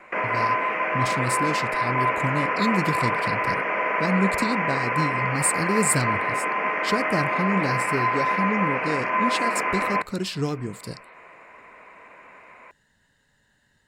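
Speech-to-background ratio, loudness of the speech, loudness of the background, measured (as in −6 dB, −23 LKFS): −4.0 dB, −28.0 LKFS, −24.0 LKFS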